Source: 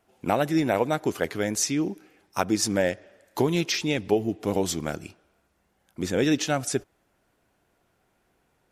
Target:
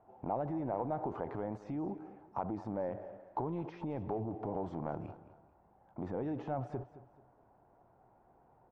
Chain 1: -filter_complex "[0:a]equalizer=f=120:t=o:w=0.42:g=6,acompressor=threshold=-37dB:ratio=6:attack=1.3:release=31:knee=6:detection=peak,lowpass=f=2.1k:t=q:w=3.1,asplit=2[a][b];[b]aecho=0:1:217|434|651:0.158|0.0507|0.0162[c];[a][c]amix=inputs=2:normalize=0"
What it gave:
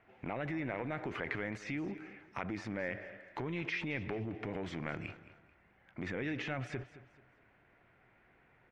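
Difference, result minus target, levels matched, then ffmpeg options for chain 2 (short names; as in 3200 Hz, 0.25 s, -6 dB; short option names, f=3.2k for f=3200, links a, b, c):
2000 Hz band +18.5 dB
-filter_complex "[0:a]equalizer=f=120:t=o:w=0.42:g=6,acompressor=threshold=-37dB:ratio=6:attack=1.3:release=31:knee=6:detection=peak,lowpass=f=860:t=q:w=3.1,asplit=2[a][b];[b]aecho=0:1:217|434|651:0.158|0.0507|0.0162[c];[a][c]amix=inputs=2:normalize=0"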